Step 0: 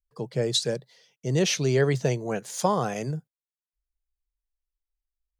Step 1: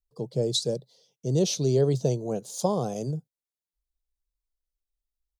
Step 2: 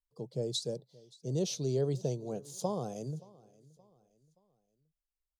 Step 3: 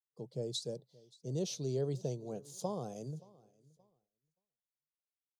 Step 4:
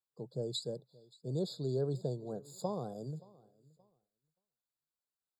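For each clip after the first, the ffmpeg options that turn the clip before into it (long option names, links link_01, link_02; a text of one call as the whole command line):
ffmpeg -i in.wav -af "firequalizer=gain_entry='entry(540,0);entry(1800,-23);entry(3700,-2)':delay=0.05:min_phase=1" out.wav
ffmpeg -i in.wav -af "aecho=1:1:574|1148|1722:0.0708|0.029|0.0119,volume=-8.5dB" out.wav
ffmpeg -i in.wav -af "agate=range=-33dB:threshold=-58dB:ratio=3:detection=peak,volume=-4dB" out.wav
ffmpeg -i in.wav -af "afftfilt=real='re*eq(mod(floor(b*sr/1024/1700),2),0)':imag='im*eq(mod(floor(b*sr/1024/1700),2),0)':win_size=1024:overlap=0.75,volume=1dB" out.wav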